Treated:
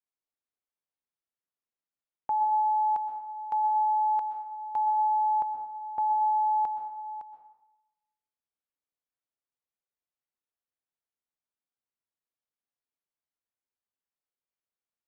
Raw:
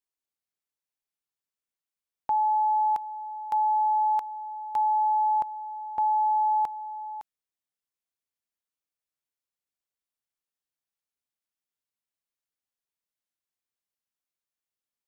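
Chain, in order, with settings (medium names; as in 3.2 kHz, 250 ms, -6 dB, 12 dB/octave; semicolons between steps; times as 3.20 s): low-pass 1.1 kHz 6 dB/octave; bass shelf 340 Hz -5 dB; reverberation RT60 0.95 s, pre-delay 114 ms, DRR 7 dB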